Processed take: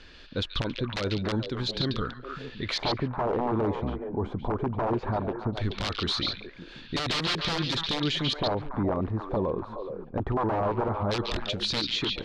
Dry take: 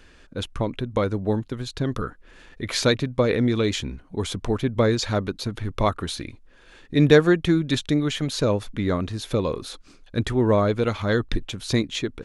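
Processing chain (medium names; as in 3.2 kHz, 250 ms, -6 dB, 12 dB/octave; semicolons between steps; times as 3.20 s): dynamic bell 360 Hz, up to +4 dB, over -37 dBFS, Q 7.4; integer overflow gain 14 dB; LFO low-pass square 0.18 Hz 870–4300 Hz; peak limiter -20 dBFS, peak gain reduction 13.5 dB; repeats whose band climbs or falls 141 ms, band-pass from 3.4 kHz, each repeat -1.4 oct, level -0.5 dB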